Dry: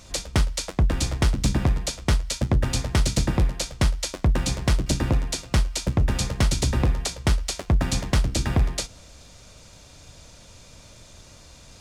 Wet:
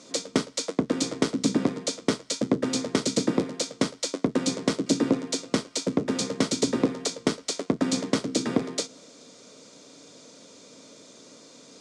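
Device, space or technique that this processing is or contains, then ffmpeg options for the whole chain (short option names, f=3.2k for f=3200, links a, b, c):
television speaker: -af "highpass=f=190:w=0.5412,highpass=f=190:w=1.3066,equalizer=f=270:t=q:w=4:g=9,equalizer=f=450:t=q:w=4:g=9,equalizer=f=820:t=q:w=4:g=-6,equalizer=f=1.7k:t=q:w=4:g=-5,equalizer=f=2.7k:t=q:w=4:g=-6,lowpass=f=8.7k:w=0.5412,lowpass=f=8.7k:w=1.3066"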